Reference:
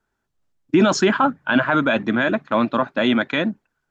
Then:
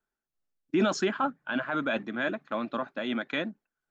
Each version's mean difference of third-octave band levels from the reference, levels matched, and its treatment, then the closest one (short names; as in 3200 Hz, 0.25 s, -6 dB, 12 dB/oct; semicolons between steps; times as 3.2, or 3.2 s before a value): 2.0 dB: bell 90 Hz -13.5 dB 0.94 oct; notch 960 Hz, Q 12; noise-modulated level, depth 65%; gain -8 dB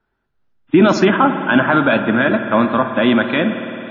4.5 dB: air absorption 150 m; spring tank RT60 3.3 s, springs 54 ms, chirp 25 ms, DRR 7.5 dB; gain +4.5 dB; WMA 32 kbps 48000 Hz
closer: first